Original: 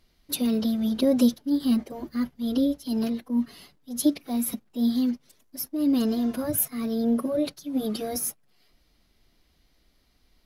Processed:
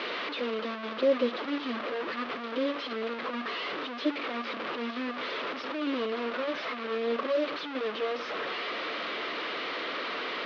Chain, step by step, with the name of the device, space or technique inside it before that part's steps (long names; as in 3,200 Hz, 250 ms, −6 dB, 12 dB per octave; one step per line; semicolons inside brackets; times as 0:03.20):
digital answering machine (band-pass filter 300–3,400 Hz; linear delta modulator 32 kbit/s, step −27 dBFS; loudspeaker in its box 380–3,600 Hz, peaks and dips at 480 Hz +5 dB, 780 Hz −6 dB, 1,200 Hz +6 dB)